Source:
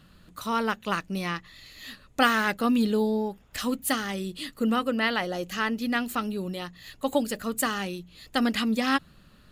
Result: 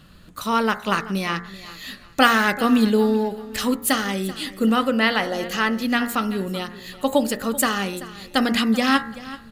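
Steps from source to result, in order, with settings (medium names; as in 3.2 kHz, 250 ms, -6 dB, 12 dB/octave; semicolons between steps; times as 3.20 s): de-hum 59.14 Hz, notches 38; on a send: feedback delay 384 ms, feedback 29%, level -17 dB; on the sum: trim +6.5 dB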